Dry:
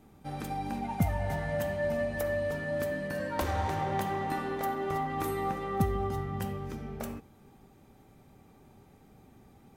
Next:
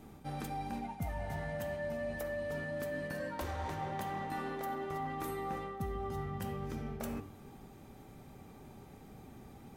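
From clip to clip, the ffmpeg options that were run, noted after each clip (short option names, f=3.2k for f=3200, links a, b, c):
-af "bandreject=f=96.99:t=h:w=4,bandreject=f=193.98:t=h:w=4,bandreject=f=290.97:t=h:w=4,bandreject=f=387.96:t=h:w=4,bandreject=f=484.95:t=h:w=4,bandreject=f=581.94:t=h:w=4,bandreject=f=678.93:t=h:w=4,bandreject=f=775.92:t=h:w=4,bandreject=f=872.91:t=h:w=4,bandreject=f=969.9:t=h:w=4,bandreject=f=1.06689k:t=h:w=4,bandreject=f=1.16388k:t=h:w=4,bandreject=f=1.26087k:t=h:w=4,bandreject=f=1.35786k:t=h:w=4,bandreject=f=1.45485k:t=h:w=4,bandreject=f=1.55184k:t=h:w=4,bandreject=f=1.64883k:t=h:w=4,bandreject=f=1.74582k:t=h:w=4,bandreject=f=1.84281k:t=h:w=4,bandreject=f=1.9398k:t=h:w=4,bandreject=f=2.03679k:t=h:w=4,bandreject=f=2.13378k:t=h:w=4,bandreject=f=2.23077k:t=h:w=4,bandreject=f=2.32776k:t=h:w=4,bandreject=f=2.42475k:t=h:w=4,bandreject=f=2.52174k:t=h:w=4,bandreject=f=2.61873k:t=h:w=4,bandreject=f=2.71572k:t=h:w=4,bandreject=f=2.81271k:t=h:w=4,bandreject=f=2.9097k:t=h:w=4,areverse,acompressor=threshold=-41dB:ratio=6,areverse,volume=4.5dB"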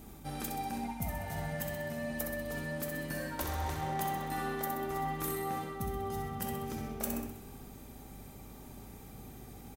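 -af "aeval=exprs='val(0)+0.00251*(sin(2*PI*50*n/s)+sin(2*PI*2*50*n/s)/2+sin(2*PI*3*50*n/s)/3+sin(2*PI*4*50*n/s)/4+sin(2*PI*5*50*n/s)/5)':c=same,aecho=1:1:64|128|192|256|320|384|448:0.501|0.276|0.152|0.0834|0.0459|0.0252|0.0139,crystalizer=i=2:c=0"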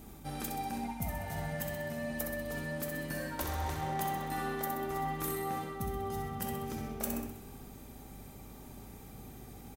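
-af anull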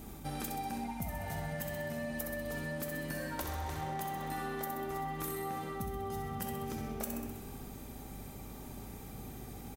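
-af "acompressor=threshold=-38dB:ratio=6,volume=3dB"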